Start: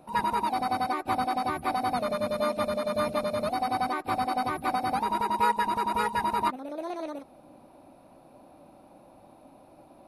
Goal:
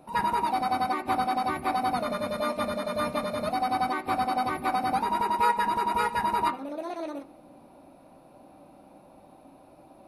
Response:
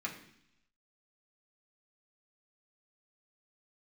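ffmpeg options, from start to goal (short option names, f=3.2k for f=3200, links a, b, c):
-filter_complex "[0:a]asplit=2[a][b];[1:a]atrim=start_sample=2205,asetrate=48510,aresample=44100,adelay=8[c];[b][c]afir=irnorm=-1:irlink=0,volume=-8dB[d];[a][d]amix=inputs=2:normalize=0"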